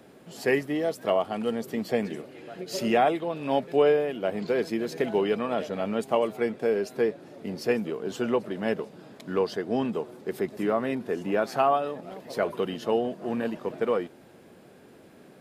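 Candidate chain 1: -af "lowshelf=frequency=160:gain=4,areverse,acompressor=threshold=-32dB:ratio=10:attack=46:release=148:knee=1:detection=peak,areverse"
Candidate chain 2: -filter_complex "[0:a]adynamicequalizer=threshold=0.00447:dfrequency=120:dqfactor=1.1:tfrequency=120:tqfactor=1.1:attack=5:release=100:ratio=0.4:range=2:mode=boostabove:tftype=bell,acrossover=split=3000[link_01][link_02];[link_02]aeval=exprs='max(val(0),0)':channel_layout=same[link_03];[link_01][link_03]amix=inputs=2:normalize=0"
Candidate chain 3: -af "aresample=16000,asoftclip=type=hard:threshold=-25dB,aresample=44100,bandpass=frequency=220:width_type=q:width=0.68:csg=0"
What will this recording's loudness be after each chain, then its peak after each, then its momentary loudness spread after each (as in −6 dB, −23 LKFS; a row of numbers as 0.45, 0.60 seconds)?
−34.0, −27.5, −34.5 LKFS; −16.5, −10.0, −23.5 dBFS; 8, 10, 7 LU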